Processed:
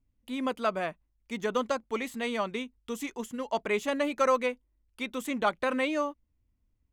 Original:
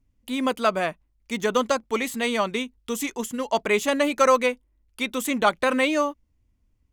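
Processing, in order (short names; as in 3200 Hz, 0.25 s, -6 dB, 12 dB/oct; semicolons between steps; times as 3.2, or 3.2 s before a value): high shelf 4600 Hz -7.5 dB; gain -6.5 dB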